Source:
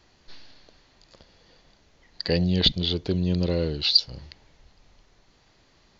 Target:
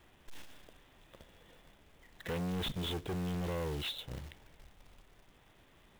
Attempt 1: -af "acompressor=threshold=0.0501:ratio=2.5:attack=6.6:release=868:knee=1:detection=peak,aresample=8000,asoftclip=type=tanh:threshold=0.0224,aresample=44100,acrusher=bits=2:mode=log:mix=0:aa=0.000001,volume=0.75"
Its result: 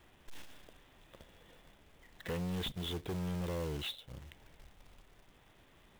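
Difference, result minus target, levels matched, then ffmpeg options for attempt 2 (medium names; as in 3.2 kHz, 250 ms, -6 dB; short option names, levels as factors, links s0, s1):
compression: peak gain reduction +11 dB
-af "aresample=8000,asoftclip=type=tanh:threshold=0.0224,aresample=44100,acrusher=bits=2:mode=log:mix=0:aa=0.000001,volume=0.75"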